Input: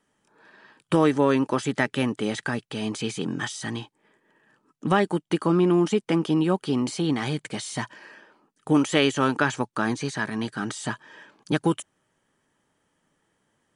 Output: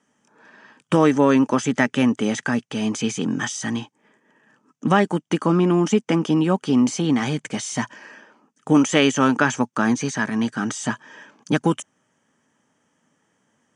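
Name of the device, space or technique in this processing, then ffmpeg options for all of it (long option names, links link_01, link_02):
car door speaker: -af "highpass=110,equalizer=frequency=240:width_type=q:width=4:gain=6,equalizer=frequency=360:width_type=q:width=4:gain=-4,equalizer=frequency=4100:width_type=q:width=4:gain=-8,equalizer=frequency=6200:width_type=q:width=4:gain=7,lowpass=frequency=8700:width=0.5412,lowpass=frequency=8700:width=1.3066,volume=4dB"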